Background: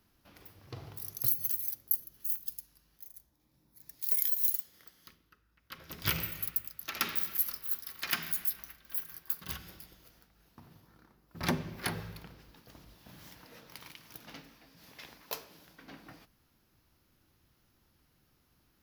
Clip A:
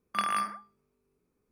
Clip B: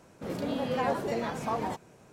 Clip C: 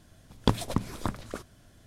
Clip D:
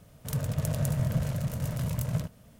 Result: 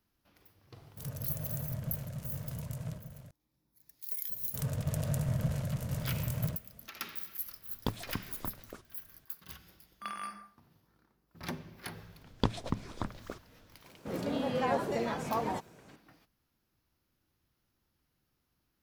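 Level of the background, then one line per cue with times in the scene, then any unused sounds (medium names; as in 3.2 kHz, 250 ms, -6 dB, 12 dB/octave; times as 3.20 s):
background -8.5 dB
0.72 s: add D -10.5 dB + delay 1179 ms -10 dB
4.29 s: add D -4 dB
7.39 s: add C -10.5 dB + low-pass 12 kHz
9.87 s: add A -11.5 dB + Schroeder reverb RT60 0.43 s, combs from 31 ms, DRR 7.5 dB
11.96 s: add C -5.5 dB + low-pass 6.2 kHz
13.84 s: add B -1.5 dB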